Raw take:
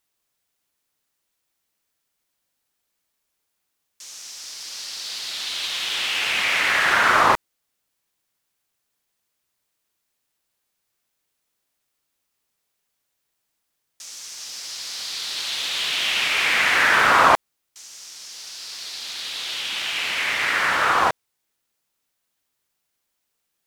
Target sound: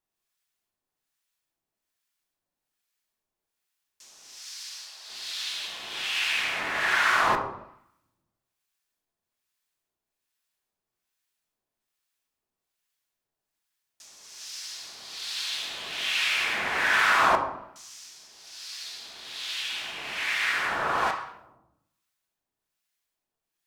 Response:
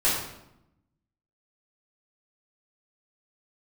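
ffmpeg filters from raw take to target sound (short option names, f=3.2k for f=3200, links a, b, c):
-filter_complex "[0:a]asettb=1/sr,asplit=3[a][b][c];[a]atrim=end=4.434[d];[b]atrim=start=4.43:end=5.1,asetpts=PTS-STARTPTS,afade=t=in:d=0.004:c=qsin,afade=t=out:st=0.666:d=0.004:c=qsin,highpass=740[e];[c]atrim=start=5.096[f];[d][e]acrossfade=d=0.004:c1=hsin:c2=qsin[g];[g][f]acrossfade=d=0.004:c1=qsin:c2=hsin,asplit=2[h][i];[1:a]atrim=start_sample=2205,highshelf=f=8.7k:g=-10.5[j];[i][j]afir=irnorm=-1:irlink=0,volume=-15.5dB[k];[h][k]amix=inputs=2:normalize=0,acrossover=split=1100[l][m];[l]aeval=exprs='val(0)*(1-0.7/2+0.7/2*cos(2*PI*1.2*n/s))':c=same[n];[m]aeval=exprs='val(0)*(1-0.7/2-0.7/2*cos(2*PI*1.2*n/s))':c=same[o];[n][o]amix=inputs=2:normalize=0,volume=-5.5dB"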